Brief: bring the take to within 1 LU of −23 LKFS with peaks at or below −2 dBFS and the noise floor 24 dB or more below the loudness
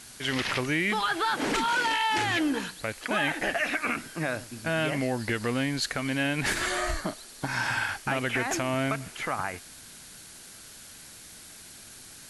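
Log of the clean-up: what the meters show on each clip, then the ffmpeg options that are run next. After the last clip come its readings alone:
background noise floor −48 dBFS; target noise floor −52 dBFS; integrated loudness −28.0 LKFS; sample peak −14.5 dBFS; target loudness −23.0 LKFS
→ -af "afftdn=noise_reduction=6:noise_floor=-48"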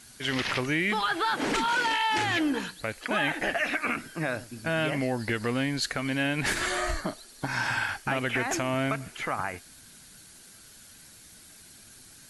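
background noise floor −52 dBFS; target noise floor −53 dBFS
→ -af "afftdn=noise_reduction=6:noise_floor=-52"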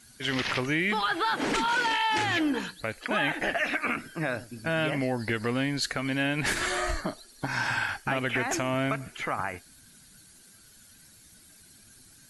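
background noise floor −55 dBFS; integrated loudness −28.5 LKFS; sample peak −15.0 dBFS; target loudness −23.0 LKFS
→ -af "volume=5.5dB"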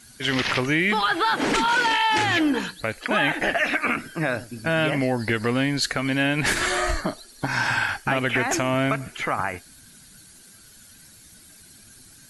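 integrated loudness −23.0 LKFS; sample peak −9.5 dBFS; background noise floor −50 dBFS

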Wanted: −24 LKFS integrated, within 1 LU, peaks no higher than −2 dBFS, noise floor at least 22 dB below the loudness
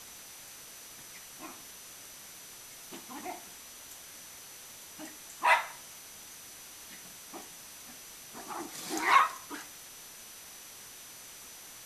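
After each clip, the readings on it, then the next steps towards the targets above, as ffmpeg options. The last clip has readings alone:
interfering tone 6,000 Hz; level of the tone −54 dBFS; background noise floor −49 dBFS; target noise floor −59 dBFS; integrated loudness −36.5 LKFS; sample peak −10.0 dBFS; target loudness −24.0 LKFS
→ -af "bandreject=frequency=6000:width=30"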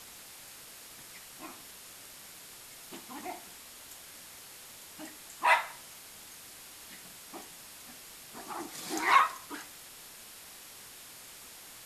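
interfering tone none found; background noise floor −50 dBFS; target noise floor −55 dBFS
→ -af "afftdn=noise_reduction=6:noise_floor=-50"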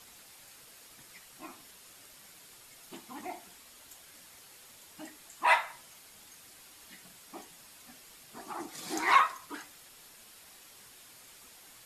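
background noise floor −55 dBFS; integrated loudness −30.5 LKFS; sample peak −9.5 dBFS; target loudness −24.0 LKFS
→ -af "volume=6.5dB"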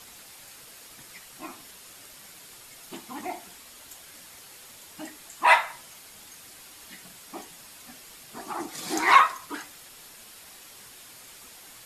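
integrated loudness −24.0 LKFS; sample peak −3.0 dBFS; background noise floor −49 dBFS

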